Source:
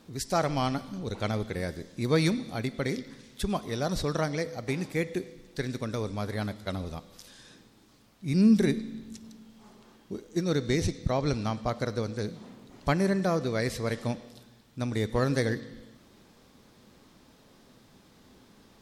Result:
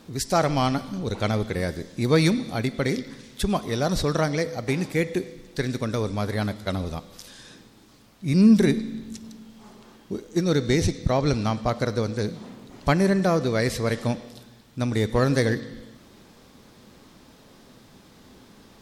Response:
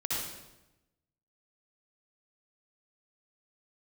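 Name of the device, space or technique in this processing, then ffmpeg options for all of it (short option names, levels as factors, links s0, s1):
parallel distortion: -filter_complex "[0:a]asplit=2[s0][s1];[s1]asoftclip=type=hard:threshold=0.0376,volume=0.224[s2];[s0][s2]amix=inputs=2:normalize=0,volume=1.68"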